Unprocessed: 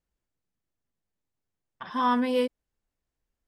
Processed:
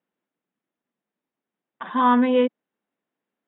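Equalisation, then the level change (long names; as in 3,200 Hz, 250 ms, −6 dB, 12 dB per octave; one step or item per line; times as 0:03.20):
Chebyshev high-pass filter 210 Hz, order 3
linear-phase brick-wall low-pass 3,900 Hz
high-frequency loss of the air 300 metres
+8.0 dB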